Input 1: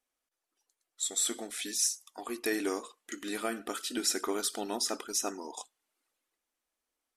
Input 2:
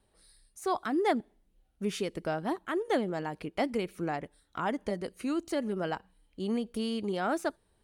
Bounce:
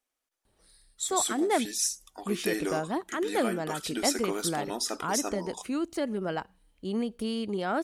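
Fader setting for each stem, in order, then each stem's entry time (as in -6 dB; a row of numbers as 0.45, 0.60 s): +0.5, +1.0 dB; 0.00, 0.45 s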